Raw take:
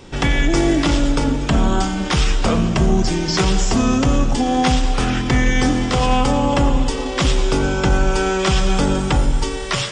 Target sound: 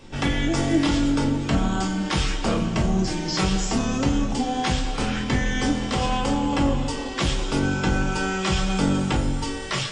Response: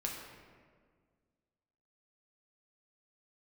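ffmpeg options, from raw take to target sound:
-filter_complex "[1:a]atrim=start_sample=2205,atrim=end_sample=4410,asetrate=79380,aresample=44100[a];[0:a][a]afir=irnorm=-1:irlink=0"

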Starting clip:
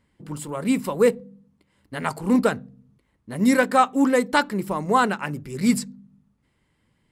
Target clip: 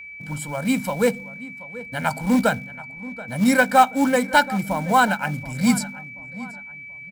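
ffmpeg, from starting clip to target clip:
-filter_complex "[0:a]aecho=1:1:1.3:0.93,acrossover=split=100|3000[a][b][c];[b]acrusher=bits=5:mode=log:mix=0:aa=0.000001[d];[a][d][c]amix=inputs=3:normalize=0,asplit=2[e][f];[f]adelay=730,lowpass=f=2.5k:p=1,volume=-17dB,asplit=2[g][h];[h]adelay=730,lowpass=f=2.5k:p=1,volume=0.39,asplit=2[i][j];[j]adelay=730,lowpass=f=2.5k:p=1,volume=0.39[k];[e][g][i][k]amix=inputs=4:normalize=0,aeval=exprs='val(0)+0.0158*sin(2*PI*2300*n/s)':c=same"

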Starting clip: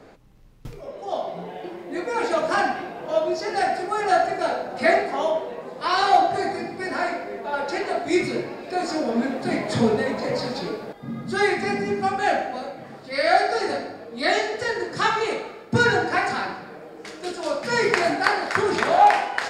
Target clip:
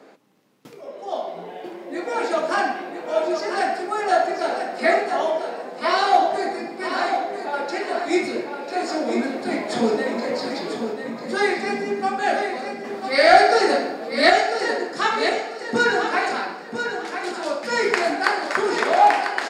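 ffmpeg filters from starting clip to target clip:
-filter_complex "[0:a]highpass=f=210:w=0.5412,highpass=f=210:w=1.3066,asettb=1/sr,asplit=3[a][b][c];[a]atrim=end=12.844[d];[b]atrim=start=12.84:end=14.3,asetpts=PTS-STARTPTS,afade=t=in:d=0.004:c=qsin,afade=t=out:st=1.456:d=0.004:c=qsin,acontrast=86[e];[c]atrim=start=14.296[f];[d][e]acrossfade=d=0.004:c1=hsin:c2=qsin[g];[g][f]acrossfade=d=0.004:c1=qsin:c2=hsin,aecho=1:1:995|1990|2985:0.422|0.114|0.0307"

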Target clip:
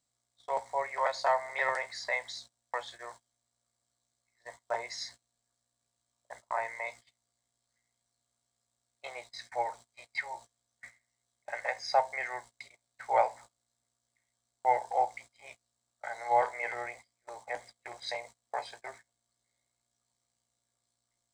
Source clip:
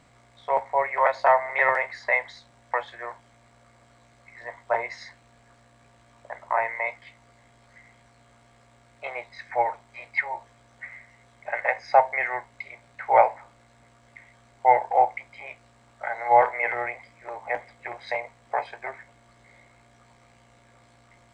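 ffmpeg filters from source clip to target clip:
-af "aexciter=amount=5.3:drive=7.3:freq=3.6k,agate=range=-22dB:threshold=-40dB:ratio=16:detection=peak,volume=-9dB"

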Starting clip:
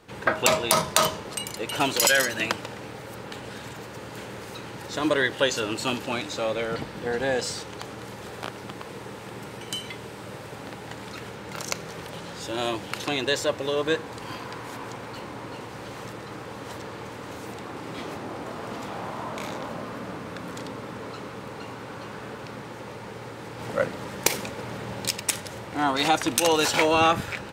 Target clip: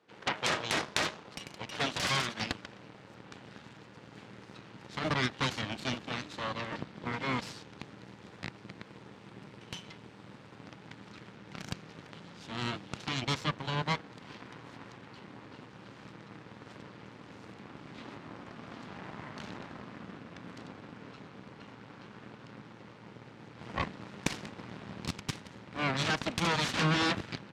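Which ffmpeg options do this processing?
-af "aeval=exprs='0.501*(cos(1*acos(clip(val(0)/0.501,-1,1)))-cos(1*PI/2))+0.251*(cos(3*acos(clip(val(0)/0.501,-1,1)))-cos(3*PI/2))+0.158*(cos(8*acos(clip(val(0)/0.501,-1,1)))-cos(8*PI/2))':c=same,highpass=180,lowpass=5k,asubboost=boost=4:cutoff=230,volume=-8.5dB"

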